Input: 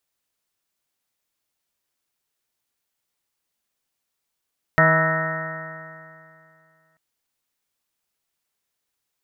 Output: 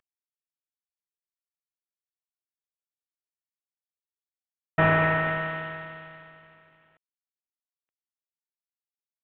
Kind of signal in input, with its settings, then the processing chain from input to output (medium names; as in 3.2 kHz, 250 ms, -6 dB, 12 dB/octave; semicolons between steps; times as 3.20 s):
stretched partials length 2.19 s, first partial 159 Hz, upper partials -11/-11/1/-12.5/-7/-15.5/0/-6/-11.5/3/-15 dB, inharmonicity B 0.001, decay 2.50 s, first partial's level -18.5 dB
CVSD coder 16 kbps